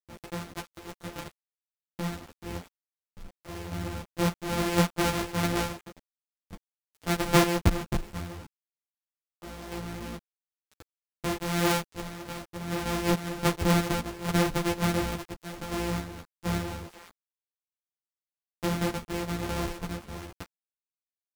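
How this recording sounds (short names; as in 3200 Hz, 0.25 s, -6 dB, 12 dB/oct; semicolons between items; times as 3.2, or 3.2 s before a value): a buzz of ramps at a fixed pitch in blocks of 256 samples; random-step tremolo, depth 75%; a quantiser's noise floor 8-bit, dither none; a shimmering, thickened sound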